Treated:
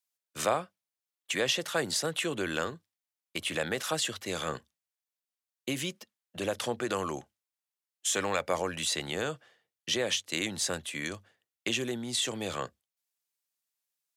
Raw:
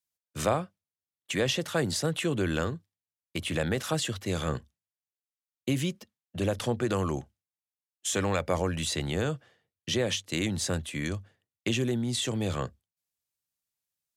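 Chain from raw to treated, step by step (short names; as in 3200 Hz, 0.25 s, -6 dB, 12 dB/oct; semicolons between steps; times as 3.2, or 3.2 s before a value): HPF 580 Hz 6 dB/oct; gain +1.5 dB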